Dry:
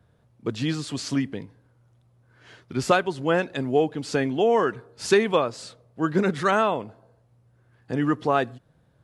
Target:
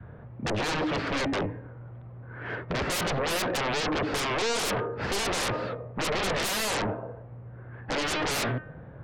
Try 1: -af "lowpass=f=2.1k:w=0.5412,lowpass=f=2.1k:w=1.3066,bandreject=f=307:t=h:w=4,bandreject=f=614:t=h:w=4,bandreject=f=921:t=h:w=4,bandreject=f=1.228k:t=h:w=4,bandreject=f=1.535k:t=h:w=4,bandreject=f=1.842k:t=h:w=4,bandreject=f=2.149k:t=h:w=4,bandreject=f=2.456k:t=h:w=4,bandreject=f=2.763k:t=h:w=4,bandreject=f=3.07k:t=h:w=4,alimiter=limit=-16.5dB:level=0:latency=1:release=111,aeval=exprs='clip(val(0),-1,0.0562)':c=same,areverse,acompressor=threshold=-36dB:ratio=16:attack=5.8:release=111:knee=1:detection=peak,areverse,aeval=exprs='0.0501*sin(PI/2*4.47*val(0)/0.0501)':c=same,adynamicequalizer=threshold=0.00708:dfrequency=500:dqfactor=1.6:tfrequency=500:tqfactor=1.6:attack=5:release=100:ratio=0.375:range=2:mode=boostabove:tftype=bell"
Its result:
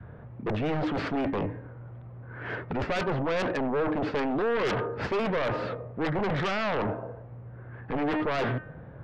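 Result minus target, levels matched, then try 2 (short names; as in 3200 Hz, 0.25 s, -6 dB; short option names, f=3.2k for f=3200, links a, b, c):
compressor: peak gain reduction +11 dB
-af "lowpass=f=2.1k:w=0.5412,lowpass=f=2.1k:w=1.3066,bandreject=f=307:t=h:w=4,bandreject=f=614:t=h:w=4,bandreject=f=921:t=h:w=4,bandreject=f=1.228k:t=h:w=4,bandreject=f=1.535k:t=h:w=4,bandreject=f=1.842k:t=h:w=4,bandreject=f=2.149k:t=h:w=4,bandreject=f=2.456k:t=h:w=4,bandreject=f=2.763k:t=h:w=4,bandreject=f=3.07k:t=h:w=4,alimiter=limit=-16.5dB:level=0:latency=1:release=111,aeval=exprs='clip(val(0),-1,0.0562)':c=same,areverse,acompressor=threshold=-24dB:ratio=16:attack=5.8:release=111:knee=1:detection=peak,areverse,aeval=exprs='0.0501*sin(PI/2*4.47*val(0)/0.0501)':c=same,adynamicequalizer=threshold=0.00708:dfrequency=500:dqfactor=1.6:tfrequency=500:tqfactor=1.6:attack=5:release=100:ratio=0.375:range=2:mode=boostabove:tftype=bell"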